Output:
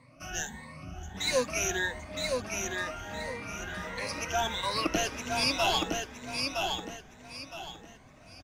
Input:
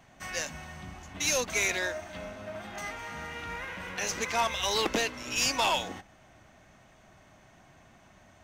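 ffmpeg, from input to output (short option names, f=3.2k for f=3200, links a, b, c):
-af "afftfilt=real='re*pow(10,21/40*sin(2*PI*(0.97*log(max(b,1)*sr/1024/100)/log(2)-(1.5)*(pts-256)/sr)))':imag='im*pow(10,21/40*sin(2*PI*(0.97*log(max(b,1)*sr/1024/100)/log(2)-(1.5)*(pts-256)/sr)))':win_size=1024:overlap=0.75,lowshelf=f=440:g=6,aecho=1:1:965|1930|2895|3860:0.631|0.189|0.0568|0.017,volume=-7dB"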